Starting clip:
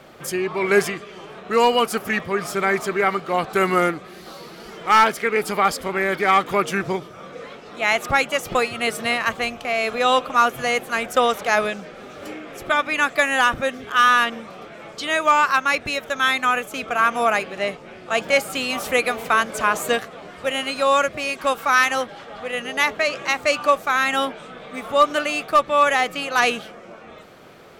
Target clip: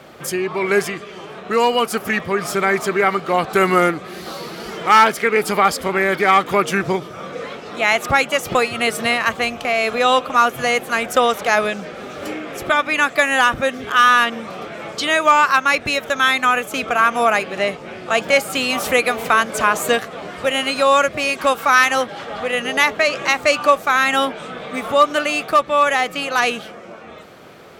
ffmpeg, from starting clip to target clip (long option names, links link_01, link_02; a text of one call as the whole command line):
ffmpeg -i in.wav -filter_complex "[0:a]dynaudnorm=framelen=230:gausssize=21:maxgain=11.5dB,highpass=45,asplit=2[link_01][link_02];[link_02]acompressor=threshold=-24dB:ratio=6,volume=0.5dB[link_03];[link_01][link_03]amix=inputs=2:normalize=0,volume=-2.5dB" out.wav